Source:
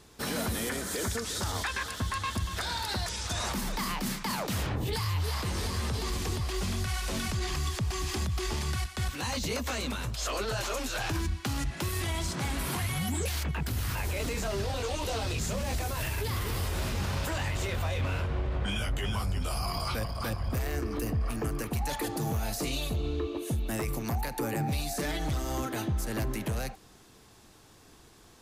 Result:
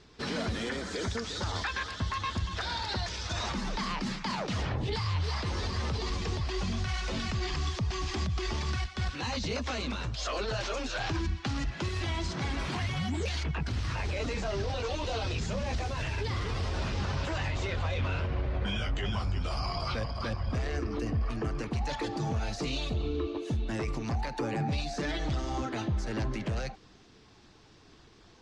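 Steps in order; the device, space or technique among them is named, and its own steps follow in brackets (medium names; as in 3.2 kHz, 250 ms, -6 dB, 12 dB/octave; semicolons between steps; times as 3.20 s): clip after many re-uploads (low-pass 5.8 kHz 24 dB/octave; coarse spectral quantiser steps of 15 dB)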